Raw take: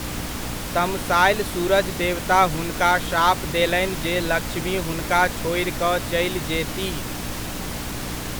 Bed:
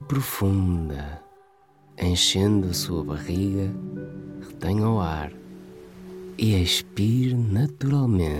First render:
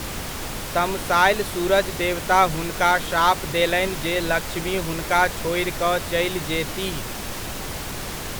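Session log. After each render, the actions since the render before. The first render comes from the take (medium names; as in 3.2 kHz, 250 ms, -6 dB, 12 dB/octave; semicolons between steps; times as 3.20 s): de-hum 60 Hz, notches 5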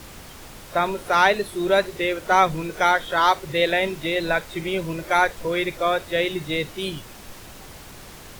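noise print and reduce 11 dB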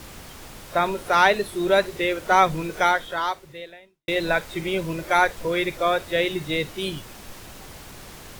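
2.80–4.08 s: fade out quadratic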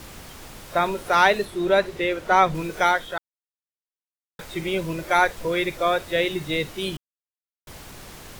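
1.45–2.55 s: treble shelf 5.8 kHz -8.5 dB; 3.18–4.39 s: mute; 6.97–7.67 s: mute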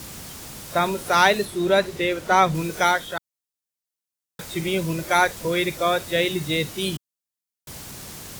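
high-pass 190 Hz 6 dB/octave; tone controls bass +10 dB, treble +8 dB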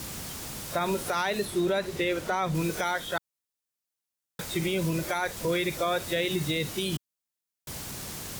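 compression 2.5:1, threshold -21 dBFS, peak gain reduction 7 dB; peak limiter -18.5 dBFS, peak gain reduction 8.5 dB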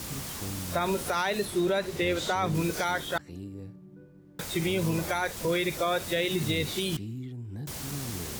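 add bed -16.5 dB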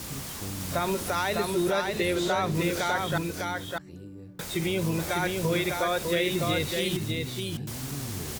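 delay 603 ms -3.5 dB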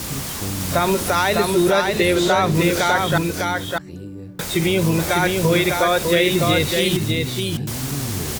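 trim +9.5 dB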